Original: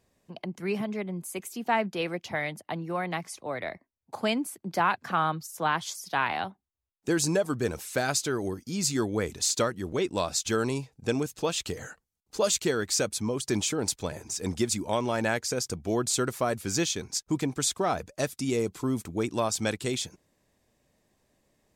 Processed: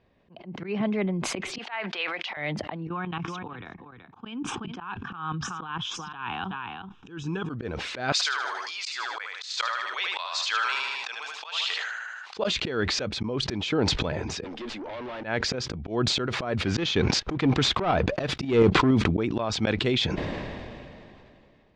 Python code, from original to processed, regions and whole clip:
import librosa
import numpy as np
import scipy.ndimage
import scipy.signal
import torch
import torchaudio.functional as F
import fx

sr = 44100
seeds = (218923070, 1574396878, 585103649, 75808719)

y = fx.chain(x, sr, fx.highpass(hz=1100.0, slope=12),
    fx.high_shelf(hz=8100.0, db=5.0), at=(1.58, 2.37))
y = fx.chain(y, sr, fx.level_steps(step_db=16),
    fx.fixed_phaser(hz=3000.0, stages=8),
    fx.echo_single(ms=377, db=-19.5), at=(2.87, 7.5))
y = fx.chain(y, sr, fx.highpass(hz=960.0, slope=24),
    fx.high_shelf(hz=3600.0, db=10.0),
    fx.echo_feedback(ms=77, feedback_pct=35, wet_db=-5.0), at=(8.12, 12.37))
y = fx.chain(y, sr, fx.highpass(hz=270.0, slope=24),
    fx.tube_stage(drive_db=39.0, bias=0.4), at=(14.44, 15.24))
y = fx.chain(y, sr, fx.leveller(passes=2),
    fx.tremolo_shape(shape='saw_up', hz=5.6, depth_pct=55), at=(16.66, 18.91))
y = scipy.signal.sosfilt(scipy.signal.butter(4, 3600.0, 'lowpass', fs=sr, output='sos'), y)
y = fx.auto_swell(y, sr, attack_ms=182.0)
y = fx.sustainer(y, sr, db_per_s=22.0)
y = F.gain(torch.from_numpy(y), 5.0).numpy()